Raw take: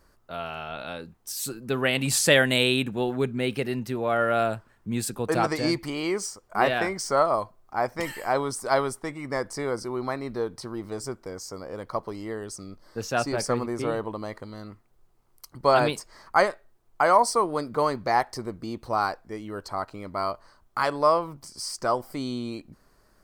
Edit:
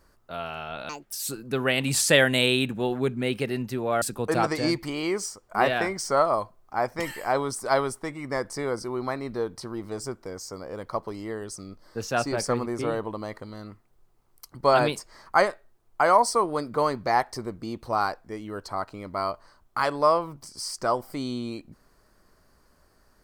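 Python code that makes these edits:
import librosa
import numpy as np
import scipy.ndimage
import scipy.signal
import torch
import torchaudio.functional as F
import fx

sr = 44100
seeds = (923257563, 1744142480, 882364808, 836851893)

y = fx.edit(x, sr, fx.speed_span(start_s=0.89, length_s=0.41, speed=1.73),
    fx.cut(start_s=4.19, length_s=0.83), tone=tone)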